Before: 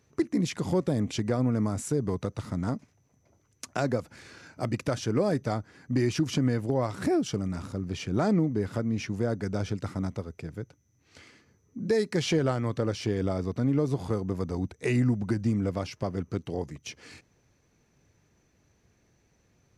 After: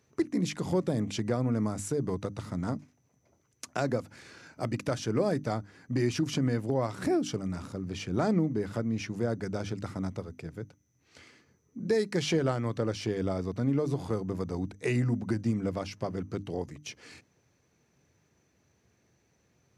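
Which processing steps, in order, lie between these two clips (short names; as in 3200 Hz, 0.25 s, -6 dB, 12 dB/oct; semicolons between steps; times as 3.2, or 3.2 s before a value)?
HPF 74 Hz; notches 50/100/150/200/250/300 Hz; gain -1.5 dB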